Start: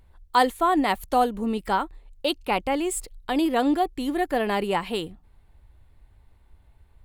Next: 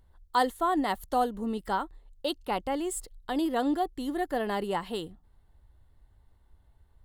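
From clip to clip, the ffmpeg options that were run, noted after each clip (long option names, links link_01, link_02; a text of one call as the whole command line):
ffmpeg -i in.wav -af "equalizer=frequency=2400:width_type=o:width=0.22:gain=-14,volume=-5.5dB" out.wav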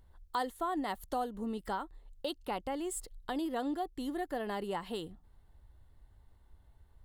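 ffmpeg -i in.wav -af "acompressor=threshold=-38dB:ratio=2" out.wav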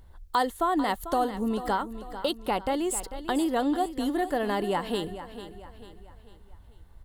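ffmpeg -i in.wav -af "aecho=1:1:444|888|1332|1776:0.237|0.102|0.0438|0.0189,volume=9dB" out.wav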